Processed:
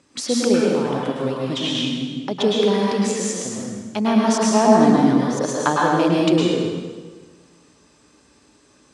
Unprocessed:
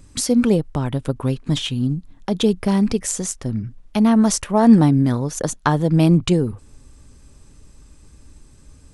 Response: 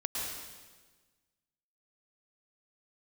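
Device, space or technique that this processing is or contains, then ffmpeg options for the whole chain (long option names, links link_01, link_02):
supermarket ceiling speaker: -filter_complex "[0:a]highpass=300,lowpass=5800[link_01];[1:a]atrim=start_sample=2205[link_02];[link_01][link_02]afir=irnorm=-1:irlink=0"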